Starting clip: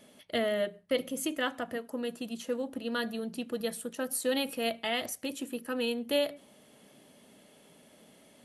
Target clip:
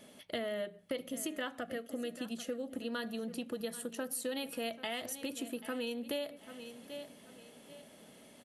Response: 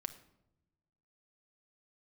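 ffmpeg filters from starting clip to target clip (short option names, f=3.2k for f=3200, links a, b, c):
-filter_complex "[0:a]asettb=1/sr,asplit=3[a][b][c];[a]atrim=end=1.604[d];[b]atrim=start=1.6:end=2.76,asetpts=PTS-STARTPTS,afade=t=in:d=0.004:c=qsin,afade=t=out:st=1.156:d=0.004:c=qsin,asuperstop=centerf=940:order=4:qfactor=2.9[e];[c]atrim=start=2.756[f];[d][e]acrossfade=d=0.004:c1=hsin:c2=qsin[g];[g][f]acrossfade=d=0.004:c1=qsin:c2=hsin,aecho=1:1:786|1572|2358:0.119|0.038|0.0122,acompressor=threshold=-37dB:ratio=4,volume=1dB"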